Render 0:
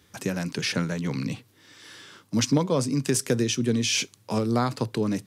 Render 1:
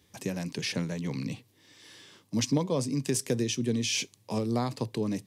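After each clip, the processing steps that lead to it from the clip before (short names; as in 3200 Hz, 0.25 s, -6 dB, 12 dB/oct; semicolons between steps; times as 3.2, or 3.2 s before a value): bell 1400 Hz -11 dB 0.38 oct; gain -4.5 dB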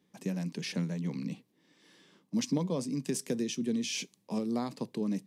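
resonant low shelf 130 Hz -11 dB, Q 3; mismatched tape noise reduction decoder only; gain -6 dB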